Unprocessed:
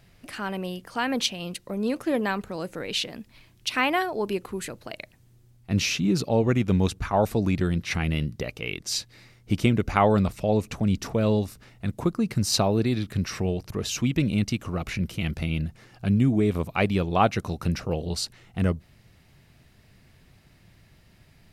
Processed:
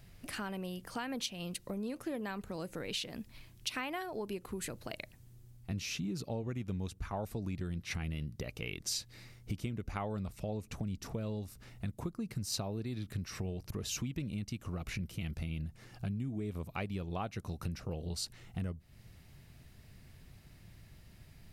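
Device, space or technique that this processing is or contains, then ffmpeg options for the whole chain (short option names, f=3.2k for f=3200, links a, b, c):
ASMR close-microphone chain: -af "lowshelf=f=150:g=7.5,acompressor=threshold=-32dB:ratio=5,highshelf=f=6.8k:g=7,volume=-4.5dB"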